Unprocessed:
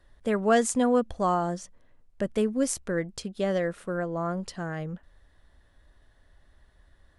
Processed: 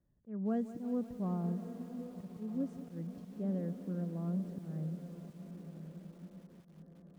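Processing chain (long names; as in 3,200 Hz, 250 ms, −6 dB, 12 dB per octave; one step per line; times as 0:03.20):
resonant band-pass 170 Hz, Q 2.1
feedback delay with all-pass diffusion 1,136 ms, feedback 50%, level −11 dB
volume swells 189 ms
feedback echo at a low word length 182 ms, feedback 80%, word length 9 bits, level −14.5 dB
level −2 dB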